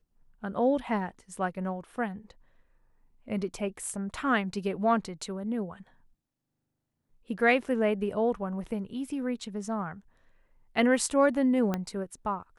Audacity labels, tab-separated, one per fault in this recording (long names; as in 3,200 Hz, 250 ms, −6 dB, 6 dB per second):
11.740000	11.740000	click −16 dBFS